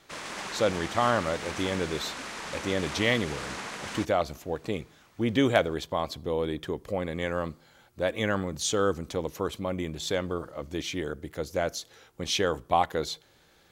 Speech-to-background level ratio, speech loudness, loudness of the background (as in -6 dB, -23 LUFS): 7.0 dB, -30.0 LUFS, -37.0 LUFS